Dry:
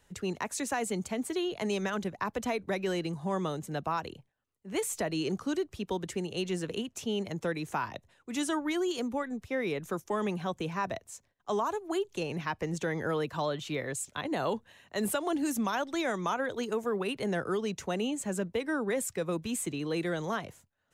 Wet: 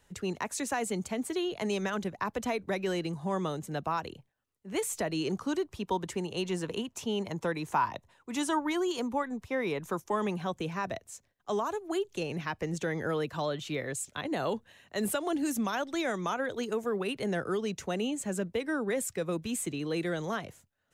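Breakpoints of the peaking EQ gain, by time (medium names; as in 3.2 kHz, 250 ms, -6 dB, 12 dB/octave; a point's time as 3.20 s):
peaking EQ 970 Hz 0.48 oct
5.11 s +0.5 dB
5.62 s +8 dB
9.86 s +8 dB
10.77 s -3 dB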